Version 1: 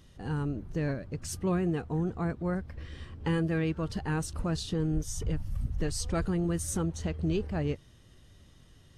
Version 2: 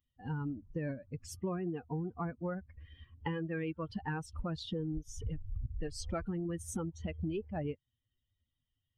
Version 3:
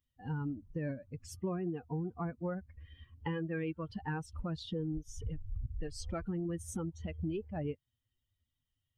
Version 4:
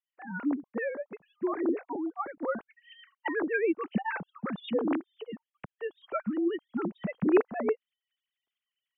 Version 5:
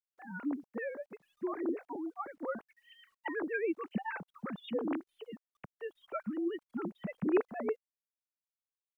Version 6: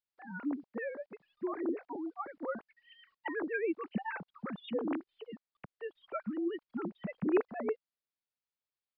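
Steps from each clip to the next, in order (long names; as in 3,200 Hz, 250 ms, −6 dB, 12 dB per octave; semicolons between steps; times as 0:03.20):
spectral dynamics exaggerated over time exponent 2; bass and treble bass −5 dB, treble −13 dB; downward compressor, threshold −41 dBFS, peak gain reduction 11.5 dB; level +7 dB
harmonic and percussive parts rebalanced harmonic +3 dB; level −2.5 dB
three sine waves on the formant tracks; automatic gain control gain up to 7 dB
bit-depth reduction 12 bits, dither none; level −6 dB
downsampling to 11,025 Hz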